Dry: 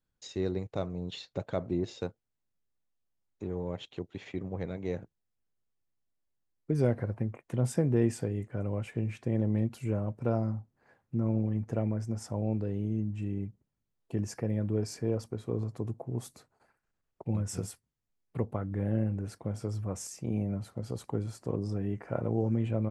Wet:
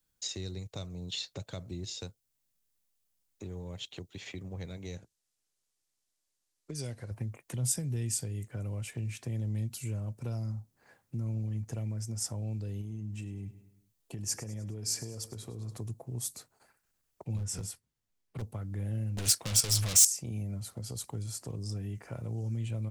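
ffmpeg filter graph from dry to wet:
ffmpeg -i in.wav -filter_complex "[0:a]asettb=1/sr,asplit=3[link_01][link_02][link_03];[link_01]atrim=end=4.974[link_04];[link_02]atrim=start=4.97:end=7.11,asetpts=PTS-STARTPTS,afade=type=in:duration=0.004:curve=qsin,afade=type=out:start_time=2.136:duration=0.004:curve=qsin,lowpass=8700,bass=frequency=250:gain=-7,treble=frequency=4000:gain=4[link_05];[link_03]atrim=start=7.106[link_06];[link_04][link_05]acrossfade=duration=0.004:curve1=hsin:curve2=qsin[link_07];[link_07][link_06]acrossfade=duration=0.004:curve1=qsin:curve2=hsin,asettb=1/sr,asplit=3[link_08][link_09][link_10];[link_08]atrim=end=12.814[link_11];[link_09]atrim=start=12.81:end=15.77,asetpts=PTS-STARTPTS,afade=type=in:duration=0.004:curve=qsin,afade=type=out:start_time=2.956:duration=0.004:curve=qsin,acompressor=threshold=-33dB:ratio=3:attack=3.2:release=140:knee=1:detection=peak,aecho=1:1:102|204|306|408:0.158|0.0792|0.0396|0.0198,atrim=end_sample=130536[link_12];[link_10]atrim=start=15.766[link_13];[link_11][link_12]acrossfade=duration=0.004:curve1=hsin:curve2=qsin[link_14];[link_14][link_13]acrossfade=duration=0.004:curve1=qsin:curve2=hsin,asettb=1/sr,asplit=3[link_15][link_16][link_17];[link_15]atrim=end=17.374[link_18];[link_16]atrim=start=17.37:end=18.42,asetpts=PTS-STARTPTS,afade=type=in:duration=0.004:curve=qsin,afade=type=out:start_time=1.046:duration=0.004:curve=qsin,lowpass=frequency=2900:poles=1,volume=29dB,asoftclip=hard,volume=-29dB[link_19];[link_17]atrim=start=18.416[link_20];[link_18][link_19]acrossfade=duration=0.004:curve1=hsin:curve2=qsin[link_21];[link_21][link_20]acrossfade=duration=0.004:curve1=qsin:curve2=hsin,asettb=1/sr,asplit=3[link_22][link_23][link_24];[link_22]atrim=end=19.174[link_25];[link_23]atrim=start=19.17:end=20.05,asetpts=PTS-STARTPTS,afade=type=in:duration=0.004:curve=qsin,afade=type=out:start_time=0.876:duration=0.004:curve=qsin,agate=range=-15dB:threshold=-45dB:ratio=16:release=100:detection=peak,asplit=2[link_26][link_27];[link_27]highpass=frequency=720:poles=1,volume=35dB,asoftclip=type=tanh:threshold=-20.5dB[link_28];[link_26][link_28]amix=inputs=2:normalize=0,lowpass=frequency=5700:poles=1,volume=-6dB[link_29];[link_24]atrim=start=20.046[link_30];[link_25][link_29]acrossfade=duration=0.004:curve1=hsin:curve2=qsin[link_31];[link_31][link_30]acrossfade=duration=0.004:curve1=qsin:curve2=hsin,highshelf=frequency=5300:gain=7,acrossover=split=140|3000[link_32][link_33][link_34];[link_33]acompressor=threshold=-44dB:ratio=6[link_35];[link_32][link_35][link_34]amix=inputs=3:normalize=0,highshelf=frequency=2600:gain=8.5" out.wav

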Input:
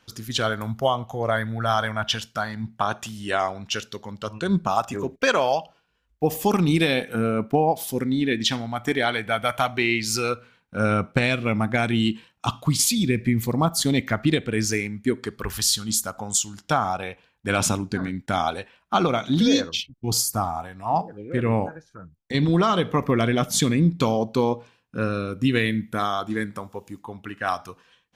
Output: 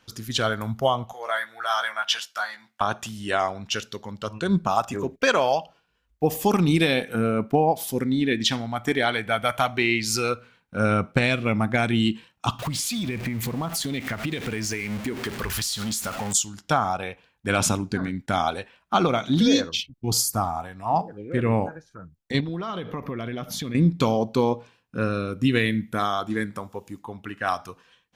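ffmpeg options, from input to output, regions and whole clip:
ffmpeg -i in.wav -filter_complex "[0:a]asettb=1/sr,asplit=3[link_01][link_02][link_03];[link_01]atrim=end=1.134[link_04];[link_02]atrim=start=1.13:end=2.81,asetpts=PTS-STARTPTS,afade=type=in:duration=0.004:curve=qsin,afade=type=out:start_time=1.676:duration=0.004:curve=qsin,highpass=1000,asplit=2[link_05][link_06];[link_06]adelay=15,volume=-4dB[link_07];[link_05][link_07]amix=inputs=2:normalize=0,atrim=end_sample=74088[link_08];[link_03]atrim=start=2.806[link_09];[link_04][link_08]acrossfade=duration=0.004:curve1=hsin:curve2=qsin[link_10];[link_10][link_09]acrossfade=duration=0.004:curve1=qsin:curve2=hsin,asettb=1/sr,asplit=3[link_11][link_12][link_13];[link_11]atrim=end=12.594[link_14];[link_12]atrim=start=12.59:end=16.33,asetpts=PTS-STARTPTS,afade=type=in:duration=0.004:curve=qsin,afade=type=out:start_time=3.736:duration=0.004:curve=qsin,aeval=exprs='val(0)+0.5*0.0316*sgn(val(0))':channel_layout=same,equalizer=frequency=2400:width=1:gain=4.5,acompressor=threshold=-24dB:ratio=10:attack=3.2:release=140:knee=1:detection=peak[link_15];[link_13]atrim=start=16.326[link_16];[link_14][link_15]acrossfade=duration=0.004:curve1=hsin:curve2=qsin[link_17];[link_17][link_16]acrossfade=duration=0.004:curve1=qsin:curve2=hsin,asettb=1/sr,asplit=3[link_18][link_19][link_20];[link_18]atrim=end=22.404[link_21];[link_19]atrim=start=22.4:end=23.75,asetpts=PTS-STARTPTS,afade=type=in:duration=0.004:curve=qsin,afade=type=out:start_time=1.346:duration=0.004:curve=qsin,equalizer=frequency=8000:width_type=o:width=0.63:gain=-12.5,acompressor=threshold=-28dB:ratio=5:attack=3.2:release=140:knee=1:detection=peak[link_22];[link_20]atrim=start=23.746[link_23];[link_21][link_22]acrossfade=duration=0.004:curve1=hsin:curve2=qsin[link_24];[link_24][link_23]acrossfade=duration=0.004:curve1=qsin:curve2=hsin" out.wav

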